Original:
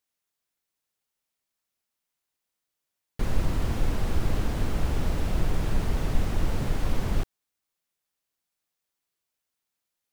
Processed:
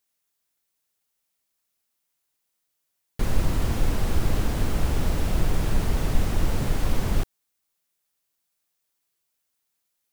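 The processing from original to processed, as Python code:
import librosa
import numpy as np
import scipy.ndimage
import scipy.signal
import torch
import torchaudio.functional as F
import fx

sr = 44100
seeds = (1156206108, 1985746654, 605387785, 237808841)

y = fx.high_shelf(x, sr, hz=6500.0, db=6.0)
y = F.gain(torch.from_numpy(y), 2.5).numpy()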